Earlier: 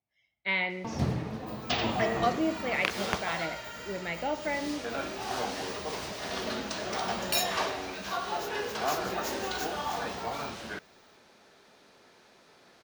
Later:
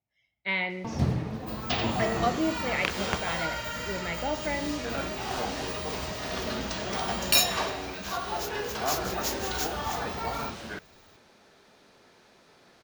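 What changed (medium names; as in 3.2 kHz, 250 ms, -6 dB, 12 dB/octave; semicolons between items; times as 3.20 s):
second sound +7.5 dB; master: add bass shelf 160 Hz +6 dB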